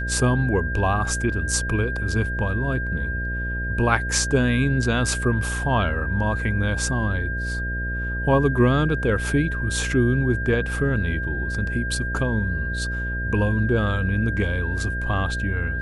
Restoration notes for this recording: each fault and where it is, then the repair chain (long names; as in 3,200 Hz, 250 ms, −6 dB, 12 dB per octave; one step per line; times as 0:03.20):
mains buzz 60 Hz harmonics 11 −28 dBFS
whistle 1,600 Hz −28 dBFS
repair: notch filter 1,600 Hz, Q 30
hum removal 60 Hz, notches 11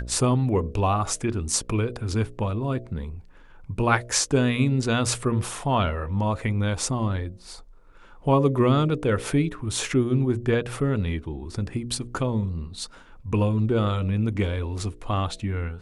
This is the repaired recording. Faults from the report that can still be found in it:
none of them is left